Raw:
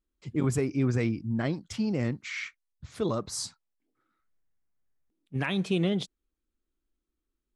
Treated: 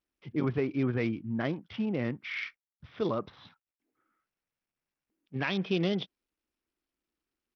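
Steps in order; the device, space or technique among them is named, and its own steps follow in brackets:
Bluetooth headset (high-pass filter 200 Hz 6 dB per octave; downsampling to 8,000 Hz; SBC 64 kbit/s 44,100 Hz)

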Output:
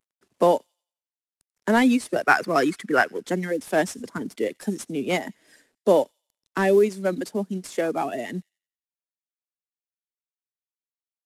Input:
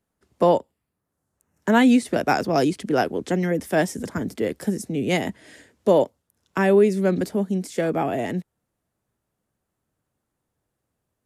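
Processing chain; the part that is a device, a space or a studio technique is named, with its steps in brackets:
reverb reduction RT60 1.7 s
early wireless headset (high-pass filter 200 Hz 12 dB per octave; variable-slope delta modulation 64 kbit/s)
0:02.23–0:03.18: flat-topped bell 1,600 Hz +9.5 dB 1.3 octaves
delay with a high-pass on its return 89 ms, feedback 40%, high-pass 3,400 Hz, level −24 dB

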